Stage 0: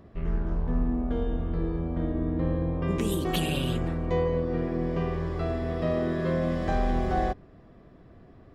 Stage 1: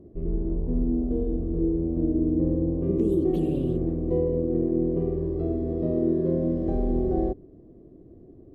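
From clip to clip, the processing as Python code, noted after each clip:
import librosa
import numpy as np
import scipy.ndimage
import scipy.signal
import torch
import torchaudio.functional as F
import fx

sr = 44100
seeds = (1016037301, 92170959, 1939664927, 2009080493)

y = fx.curve_eq(x, sr, hz=(210.0, 340.0, 1400.0, 4700.0), db=(0, 10, -24, -21))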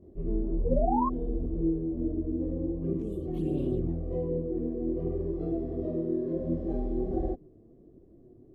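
y = fx.rider(x, sr, range_db=4, speed_s=0.5)
y = fx.spec_paint(y, sr, seeds[0], shape='rise', start_s=0.64, length_s=0.43, low_hz=460.0, high_hz=1100.0, level_db=-22.0)
y = fx.chorus_voices(y, sr, voices=2, hz=0.69, base_ms=23, depth_ms=4.7, mix_pct=65)
y = y * 10.0 ** (-3.5 / 20.0)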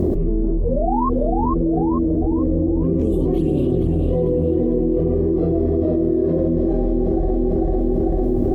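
y = fx.echo_feedback(x, sr, ms=447, feedback_pct=40, wet_db=-6.0)
y = fx.env_flatten(y, sr, amount_pct=100)
y = y * 10.0 ** (4.5 / 20.0)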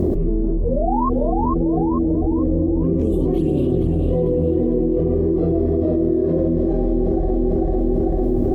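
y = x + 10.0 ** (-21.0 / 20.0) * np.pad(x, (int(232 * sr / 1000.0), 0))[:len(x)]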